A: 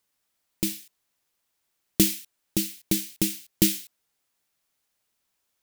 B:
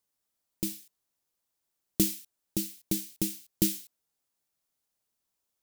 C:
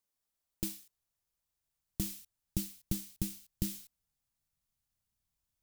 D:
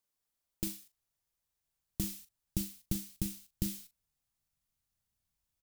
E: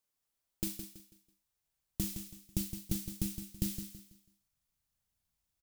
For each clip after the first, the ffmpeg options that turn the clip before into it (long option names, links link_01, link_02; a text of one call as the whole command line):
ffmpeg -i in.wav -af "equalizer=frequency=2200:width_type=o:width=1.8:gain=-6,volume=-5dB" out.wav
ffmpeg -i in.wav -af "acrusher=bits=3:mode=log:mix=0:aa=0.000001,asubboost=boost=11:cutoff=120,alimiter=limit=-13dB:level=0:latency=1:release=223,volume=-4.5dB" out.wav
ffmpeg -i in.wav -filter_complex "[0:a]asplit=2[link_01][link_02];[link_02]adelay=40,volume=-13dB[link_03];[link_01][link_03]amix=inputs=2:normalize=0" out.wav
ffmpeg -i in.wav -af "aecho=1:1:164|328|492|656:0.355|0.114|0.0363|0.0116" out.wav